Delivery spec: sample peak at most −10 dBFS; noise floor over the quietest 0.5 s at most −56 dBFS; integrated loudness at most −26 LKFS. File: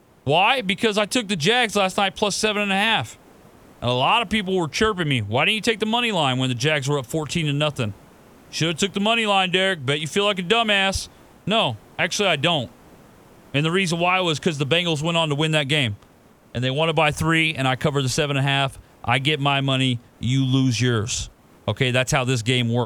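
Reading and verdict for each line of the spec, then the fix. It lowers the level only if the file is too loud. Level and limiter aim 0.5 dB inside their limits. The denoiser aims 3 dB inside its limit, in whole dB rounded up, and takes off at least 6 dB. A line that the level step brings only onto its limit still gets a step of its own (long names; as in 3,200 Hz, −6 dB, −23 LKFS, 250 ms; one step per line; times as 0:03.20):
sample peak −4.5 dBFS: out of spec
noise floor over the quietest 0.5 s −52 dBFS: out of spec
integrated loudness −20.5 LKFS: out of spec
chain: level −6 dB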